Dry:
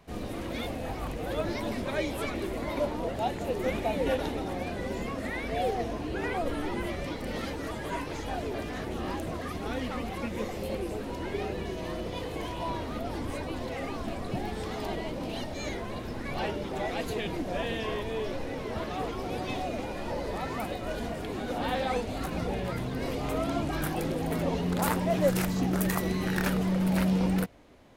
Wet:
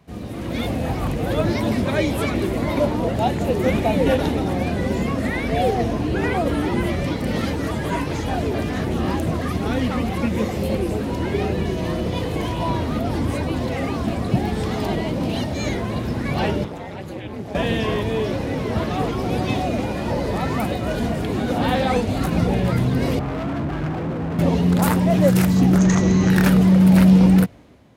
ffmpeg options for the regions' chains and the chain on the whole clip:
-filter_complex "[0:a]asettb=1/sr,asplit=3[s0][s1][s2];[s0]atrim=end=16.644[s3];[s1]atrim=start=16.64:end=17.55,asetpts=PTS-STARTPTS,afade=t=in:d=0.004:c=qsin,afade=t=out:st=0.906:d=0.004:c=qsin,acrossover=split=220|2400[s4][s5][s6];[s4]acompressor=threshold=0.00316:ratio=4[s7];[s5]acompressor=threshold=0.0112:ratio=4[s8];[s6]acompressor=threshold=0.00141:ratio=4[s9];[s7][s8][s9]amix=inputs=3:normalize=0,aeval=exprs='val(0)*sin(2*PI*100*n/s)':c=same[s10];[s2]atrim=start=17.546[s11];[s3][s10]acrossfade=d=0.004:c1=hsin:c2=qsin[s12];[s12][s11]acrossfade=d=0.004:c1=qsin:c2=hsin,asettb=1/sr,asplit=3[s13][s14][s15];[s13]atrim=end=23.194[s16];[s14]atrim=start=23.19:end=24.39,asetpts=PTS-STARTPTS,afade=t=in:d=0.004:c=qsin,afade=t=out:st=1.196:d=0.004:c=qsin,lowpass=1600,asoftclip=type=hard:threshold=0.0178[s17];[s15]atrim=start=24.386[s18];[s16][s17]acrossfade=d=0.004:c1=hsin:c2=qsin[s19];[s19][s18]acrossfade=d=0.004:c1=qsin:c2=hsin,asettb=1/sr,asplit=3[s20][s21][s22];[s20]atrim=end=25.784[s23];[s21]atrim=start=25.78:end=26.3,asetpts=PTS-STARTPTS,afade=t=in:d=0.004:c=qsin,afade=t=out:st=0.516:d=0.004:c=qsin,aemphasis=mode=reproduction:type=75fm,asoftclip=type=hard:threshold=0.0596,lowpass=f=6500:t=q:w=12[s24];[s22]atrim=start=26.296[s25];[s23][s24]acrossfade=d=0.004:c1=hsin:c2=qsin[s26];[s26][s25]acrossfade=d=0.004:c1=qsin:c2=hsin,highpass=81,bass=f=250:g=9,treble=f=4000:g=0,dynaudnorm=f=110:g=9:m=2.66"

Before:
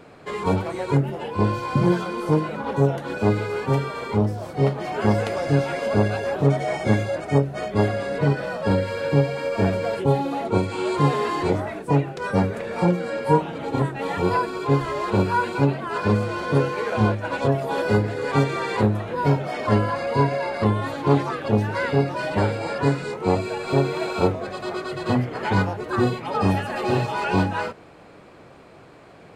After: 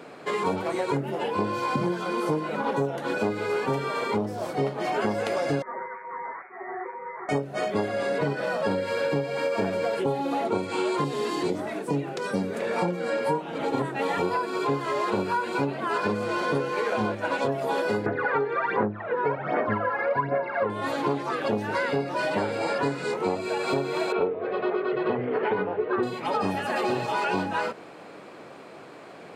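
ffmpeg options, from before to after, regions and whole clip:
-filter_complex "[0:a]asettb=1/sr,asplit=3[s0][s1][s2];[s0]atrim=end=5.624[s3];[s1]atrim=start=5.62:end=7.29,asetpts=PTS-STARTPTS,afade=t=in:d=0.004:c=qsin,afade=t=out:st=1.666:d=0.004:c=qsin,acompressor=threshold=0.0501:ratio=16:attack=3.2:release=140:knee=1:detection=peak,highpass=f=1800:t=q:w=1.8,lowpass=f=2200:t=q:w=0.5098,lowpass=f=2200:t=q:w=0.6013,lowpass=f=2200:t=q:w=0.9,lowpass=f=2200:t=q:w=2.563,afreqshift=-2600[s4];[s2]atrim=start=7.286[s5];[s3][s4]acrossfade=d=0.004:c1=hsin:c2=qsin[s6];[s6][s5]acrossfade=d=0.004:c1=qsin:c2=hsin,asettb=1/sr,asplit=3[s7][s8][s9];[s7]atrim=end=11.044[s10];[s8]atrim=start=11.04:end=12.62,asetpts=PTS-STARTPTS,afade=t=in:d=0.004:c=qsin,afade=t=out:st=1.576:d=0.004:c=qsin,highpass=120,acrossover=split=420|3000[s11][s12][s13];[s12]acompressor=threshold=0.0158:ratio=4:attack=3.2:release=140:knee=2.83:detection=peak[s14];[s11][s14][s13]amix=inputs=3:normalize=0[s15];[s9]atrim=start=12.616[s16];[s10][s15]acrossfade=d=0.004:c1=hsin:c2=qsin[s17];[s17][s16]acrossfade=d=0.004:c1=qsin:c2=hsin,asettb=1/sr,asplit=3[s18][s19][s20];[s18]atrim=end=18.064[s21];[s19]atrim=start=18.06:end=20.7,asetpts=PTS-STARTPTS,afade=t=in:d=0.004:c=qsin,afade=t=out:st=2.636:d=0.004:c=qsin,aphaser=in_gain=1:out_gain=1:delay=2.4:decay=0.72:speed=1.3:type=sinusoidal,lowpass=f=1600:t=q:w=1.7[s22];[s20]atrim=start=20.696[s23];[s21][s22]acrossfade=d=0.004:c1=hsin:c2=qsin[s24];[s24][s23]acrossfade=d=0.004:c1=qsin:c2=hsin,asettb=1/sr,asplit=3[s25][s26][s27];[s25]atrim=end=24.124[s28];[s26]atrim=start=24.12:end=26.03,asetpts=PTS-STARTPTS,afade=t=in:d=0.004:c=qsin,afade=t=out:st=1.906:d=0.004:c=qsin,lowpass=f=2900:w=0.5412,lowpass=f=2900:w=1.3066,equalizer=f=430:w=4.3:g=13.5,bandreject=f=50:t=h:w=6,bandreject=f=100:t=h:w=6,bandreject=f=150:t=h:w=6,bandreject=f=200:t=h:w=6,bandreject=f=250:t=h:w=6,bandreject=f=300:t=h:w=6,bandreject=f=350:t=h:w=6,bandreject=f=400:t=h:w=6,bandreject=f=450:t=h:w=6,bandreject=f=500:t=h:w=6[s29];[s27]atrim=start=26.026[s30];[s28][s29]acrossfade=d=0.004:c1=hsin:c2=qsin[s31];[s31][s30]acrossfade=d=0.004:c1=qsin:c2=hsin,highpass=210,acompressor=threshold=0.0501:ratio=10,volume=1.5"

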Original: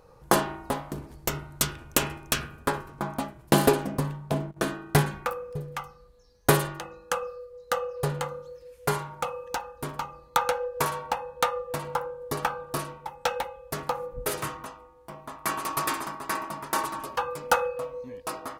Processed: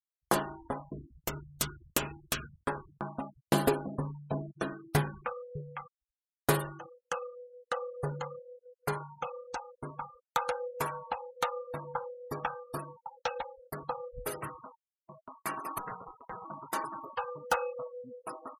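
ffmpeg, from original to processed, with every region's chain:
-filter_complex "[0:a]asettb=1/sr,asplit=3[s0][s1][s2];[s0]atrim=end=15.784[s3];[s1]atrim=start=15.78:end=16.45,asetpts=PTS-STARTPTS,afade=t=in:d=0.004:c=qsin,afade=t=out:st=0.666:d=0.004:c=qsin,highpass=f=140:w=0.5412,highpass=f=140:w=1.3066,aeval=exprs='val(0)*sin(2*PI*150*n/s)':c=same,adynamicsmooth=sensitivity=0.5:basefreq=1800[s4];[s2]atrim=start=16.446[s5];[s3][s4]acrossfade=d=0.004:c1=hsin:c2=qsin[s6];[s6][s5]acrossfade=d=0.004:c1=qsin:c2=hsin,afftfilt=real='re*gte(hypot(re,im),0.0282)':imag='im*gte(hypot(re,im),0.0282)':win_size=1024:overlap=0.75,agate=range=0.0631:threshold=0.00447:ratio=16:detection=peak,volume=0.473"

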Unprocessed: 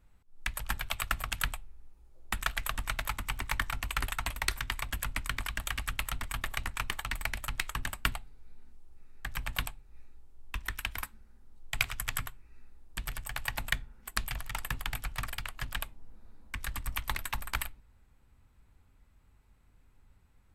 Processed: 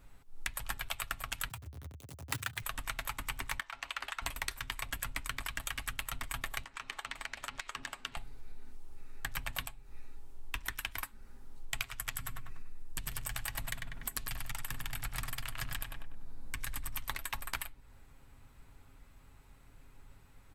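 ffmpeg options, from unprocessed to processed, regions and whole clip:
-filter_complex "[0:a]asettb=1/sr,asplit=3[s0][s1][s2];[s0]atrim=end=1.494[s3];[s1]atrim=start=1.49:end=2.62,asetpts=PTS-STARTPTS,afade=t=in:d=0.004:c=qsin,afade=t=out:st=1.126:d=0.004:c=qsin,acrusher=bits=6:dc=4:mix=0:aa=0.000001,afreqshift=71[s4];[s2]atrim=start=2.616[s5];[s3][s4]acrossfade=d=0.004:c1=hsin:c2=qsin[s6];[s6][s5]acrossfade=d=0.004:c1=qsin:c2=hsin,asettb=1/sr,asplit=3[s7][s8][s9];[s7]atrim=end=3.604[s10];[s8]atrim=start=3.6:end=4.22,asetpts=PTS-STARTPTS,afade=t=in:d=0.004:c=qsin,afade=t=out:st=0.616:d=0.004:c=qsin,acrossover=split=380 5900:gain=0.1 1 0.141[s11][s12][s13];[s11][s12][s13]amix=inputs=3:normalize=0,bandreject=f=430:w=7.3,acompressor=threshold=0.0112:ratio=2:attack=3.2:release=140:knee=1:detection=peak[s14];[s9]atrim=start=4.216[s15];[s10][s14]acrossfade=d=0.004:c1=hsin:c2=qsin[s16];[s16][s15]acrossfade=d=0.004:c1=qsin:c2=hsin,asettb=1/sr,asplit=3[s17][s18][s19];[s17]atrim=end=6.644[s20];[s18]atrim=start=6.64:end=8.17,asetpts=PTS-STARTPTS,afade=t=in:d=0.004:c=qsin,afade=t=out:st=1.526:d=0.004:c=qsin,acrossover=split=210 7000:gain=0.178 1 0.112[s21][s22][s23];[s21][s22][s23]amix=inputs=3:normalize=0,acompressor=threshold=0.00562:ratio=4:attack=3.2:release=140:knee=1:detection=peak[s24];[s19]atrim=start=8.166[s25];[s20][s24]acrossfade=d=0.004:c1=hsin:c2=qsin[s26];[s26][s25]acrossfade=d=0.004:c1=qsin:c2=hsin,asettb=1/sr,asplit=3[s27][s28][s29];[s27]atrim=end=12.154[s30];[s28]atrim=start=12.15:end=17.04,asetpts=PTS-STARTPTS,afade=t=in:d=0.004:c=qsin,afade=t=out:st=4.886:d=0.004:c=qsin,bass=f=250:g=5,treble=f=4000:g=5,acompressor=threshold=0.02:ratio=2:attack=3.2:release=140:knee=1:detection=peak,asplit=2[s31][s32];[s32]adelay=97,lowpass=f=3100:p=1,volume=0.596,asplit=2[s33][s34];[s34]adelay=97,lowpass=f=3100:p=1,volume=0.46,asplit=2[s35][s36];[s36]adelay=97,lowpass=f=3100:p=1,volume=0.46,asplit=2[s37][s38];[s38]adelay=97,lowpass=f=3100:p=1,volume=0.46,asplit=2[s39][s40];[s40]adelay=97,lowpass=f=3100:p=1,volume=0.46,asplit=2[s41][s42];[s42]adelay=97,lowpass=f=3100:p=1,volume=0.46[s43];[s31][s33][s35][s37][s39][s41][s43]amix=inputs=7:normalize=0,atrim=end_sample=215649[s44];[s29]atrim=start=17.036[s45];[s30][s44]acrossfade=d=0.004:c1=hsin:c2=qsin[s46];[s46][s45]acrossfade=d=0.004:c1=qsin:c2=hsin,bass=f=250:g=-3,treble=f=4000:g=1,aecho=1:1:7.3:0.36,acompressor=threshold=0.00708:ratio=6,volume=2.51"

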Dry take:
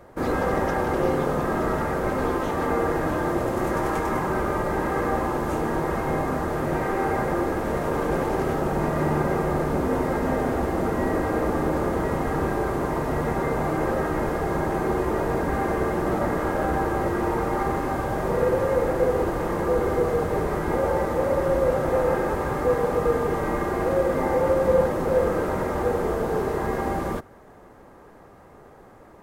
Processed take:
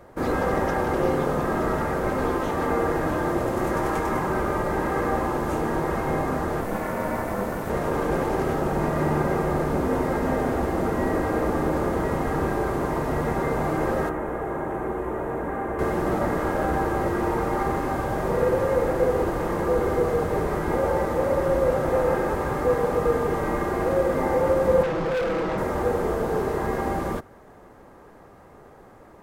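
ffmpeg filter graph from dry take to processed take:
-filter_complex "[0:a]asettb=1/sr,asplit=3[s0][s1][s2];[s0]atrim=end=6.614[s3];[s1]atrim=start=6.61:end=7.7,asetpts=PTS-STARTPTS,afade=t=in:d=0.004:c=qsin,afade=t=out:st=1.086:d=0.004:c=qsin,highshelf=f=10000:g=10.5,aeval=exprs='val(0)*sin(2*PI*150*n/s)':c=same[s4];[s2]atrim=start=7.696[s5];[s3][s4]acrossfade=d=0.004:c1=hsin:c2=qsin[s6];[s6][s5]acrossfade=d=0.004:c1=qsin:c2=hsin,asettb=1/sr,asplit=3[s7][s8][s9];[s7]atrim=end=14.094[s10];[s8]atrim=start=14.09:end=15.79,asetpts=PTS-STARTPTS,afade=t=in:d=0.004:c=qsin,afade=t=out:st=1.696:d=0.004:c=qsin,equalizer=f=4800:t=o:w=0.66:g=-11,acrossover=split=220|2300[s11][s12][s13];[s11]acompressor=threshold=0.01:ratio=4[s14];[s12]acompressor=threshold=0.0501:ratio=4[s15];[s13]acompressor=threshold=0.00112:ratio=4[s16];[s14][s15][s16]amix=inputs=3:normalize=0,aeval=exprs='val(0)+0.00891*(sin(2*PI*60*n/s)+sin(2*PI*2*60*n/s)/2+sin(2*PI*3*60*n/s)/3+sin(2*PI*4*60*n/s)/4+sin(2*PI*5*60*n/s)/5)':c=same[s17];[s9]atrim=start=15.786[s18];[s10][s17]acrossfade=d=0.004:c1=hsin:c2=qsin[s19];[s19][s18]acrossfade=d=0.004:c1=qsin:c2=hsin,asettb=1/sr,asplit=3[s20][s21][s22];[s20]atrim=end=24.834[s23];[s21]atrim=start=24.83:end=25.58,asetpts=PTS-STARTPTS,afade=t=in:d=0.004:c=qsin,afade=t=out:st=0.746:d=0.004:c=qsin,lowpass=f=5600:w=0.5412,lowpass=f=5600:w=1.3066,aecho=1:1:6.1:0.74,atrim=end_sample=33075,volume=13.3,asoftclip=hard,volume=0.075[s24];[s22]atrim=start=25.576[s25];[s23][s24]acrossfade=d=0.004:c1=hsin:c2=qsin[s26];[s26][s25]acrossfade=d=0.004:c1=qsin:c2=hsin"

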